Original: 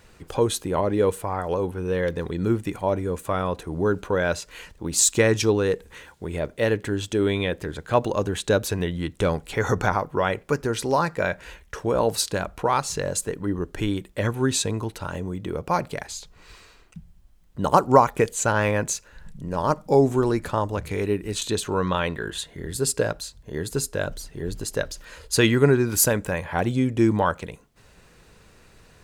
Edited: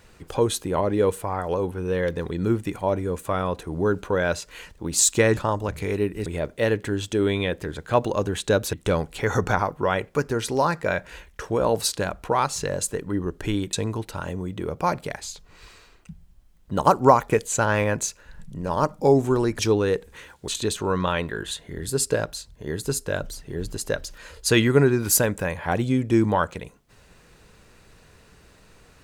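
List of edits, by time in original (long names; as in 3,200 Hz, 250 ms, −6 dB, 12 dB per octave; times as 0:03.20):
0:05.37–0:06.26: swap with 0:20.46–0:21.35
0:08.73–0:09.07: remove
0:14.07–0:14.60: remove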